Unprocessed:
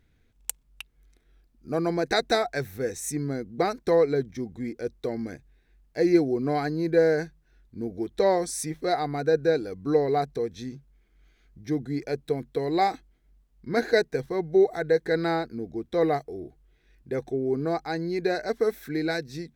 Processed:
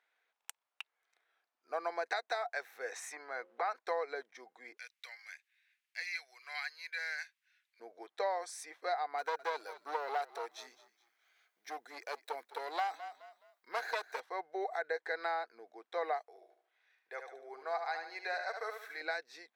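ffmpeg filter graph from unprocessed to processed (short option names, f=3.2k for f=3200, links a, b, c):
-filter_complex "[0:a]asettb=1/sr,asplit=3[a][b][c];[a]atrim=end=2.924[d];[b]atrim=start=2.92:end=3.77,asetpts=PTS-STARTPTS,afade=t=in:d=0.004:c=qsin,afade=t=out:st=0.846:d=0.004:c=qsin,bandreject=f=178.4:t=h:w=4,bandreject=f=356.8:t=h:w=4,bandreject=f=535.2:t=h:w=4,acompressor=threshold=-30dB:ratio=6:attack=3.2:release=140:knee=1:detection=peak,equalizer=f=1.3k:w=0.37:g=11.5[e];[c]atrim=start=3.766[f];[d][e]acrossfade=d=0.004:c1=hsin:c2=qsin[g];[g][f]acrossfade=d=0.004:c1=qsin:c2=hsin,asettb=1/sr,asplit=3[h][i][j];[h]atrim=end=4.774[k];[i]atrim=start=4.77:end=7.8,asetpts=PTS-STARTPTS,afade=t=in:d=0.004:c=qsin,afade=t=out:st=3.026:d=0.004:c=qsin,highpass=f=2.3k:t=q:w=2.1,aemphasis=mode=production:type=cd[l];[j]atrim=start=7.796[m];[k][l]acrossfade=d=0.004:c1=hsin:c2=qsin[n];[n][m]acrossfade=d=0.004:c1=qsin:c2=hsin,asettb=1/sr,asplit=3[o][p][q];[o]atrim=end=9.184[r];[p]atrim=start=9.18:end=14.2,asetpts=PTS-STARTPTS,afade=t=in:d=0.004:c=qsin,afade=t=out:st=5.016:d=0.004:c=qsin,aemphasis=mode=production:type=50fm,aeval=exprs='clip(val(0),-1,0.0422)':c=same,asplit=4[s][t][u][v];[t]adelay=210,afreqshift=-39,volume=-17dB[w];[u]adelay=420,afreqshift=-78,volume=-26.4dB[x];[v]adelay=630,afreqshift=-117,volume=-35.7dB[y];[s][w][x][y]amix=inputs=4:normalize=0,atrim=end_sample=221382[z];[q]atrim=start=14.196[aa];[r][z]acrossfade=d=0.004:c1=hsin:c2=qsin[ab];[ab][aa]acrossfade=d=0.004:c1=qsin:c2=hsin,asettb=1/sr,asplit=3[ac][ad][ae];[ac]atrim=end=16.264[af];[ad]atrim=start=16.26:end=19.01,asetpts=PTS-STARTPTS,afade=t=in:d=0.004:c=qsin,afade=t=out:st=2.746:d=0.004:c=qsin,equalizer=f=240:w=0.88:g=-13,aecho=1:1:74|148|222|296:0.473|0.18|0.0683|0.026,atrim=end_sample=121275[ag];[ae]atrim=start=19.006[ah];[af][ag]acrossfade=d=0.004:c1=hsin:c2=qsin[ai];[ai][ah]acrossfade=d=0.004:c1=qsin:c2=hsin,highpass=f=730:w=0.5412,highpass=f=730:w=1.3066,acompressor=threshold=-31dB:ratio=6,lowpass=f=1.5k:p=1,volume=1.5dB"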